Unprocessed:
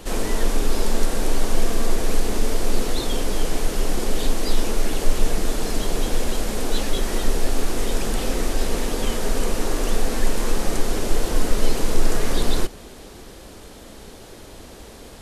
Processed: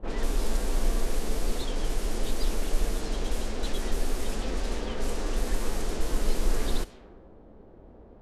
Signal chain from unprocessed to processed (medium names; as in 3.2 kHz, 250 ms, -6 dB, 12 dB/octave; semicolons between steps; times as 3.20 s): time stretch by phase-locked vocoder 0.54×; level-controlled noise filter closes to 650 Hz, open at -15 dBFS; trim -6 dB